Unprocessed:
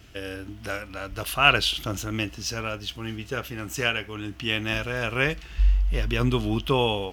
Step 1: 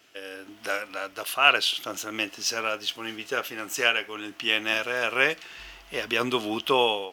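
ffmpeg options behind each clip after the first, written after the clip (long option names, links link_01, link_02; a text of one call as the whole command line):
ffmpeg -i in.wav -af "highpass=420,dynaudnorm=framelen=310:gausssize=3:maxgain=7.5dB,volume=-3.5dB" out.wav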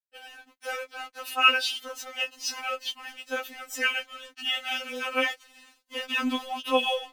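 ffmpeg -i in.wav -af "aeval=exprs='sgn(val(0))*max(abs(val(0))-0.00708,0)':channel_layout=same,afftfilt=real='re*3.46*eq(mod(b,12),0)':imag='im*3.46*eq(mod(b,12),0)':win_size=2048:overlap=0.75" out.wav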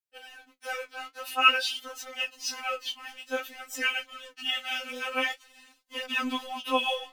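ffmpeg -i in.wav -af "flanger=delay=6.1:depth=9.4:regen=42:speed=0.51:shape=triangular,volume=2.5dB" out.wav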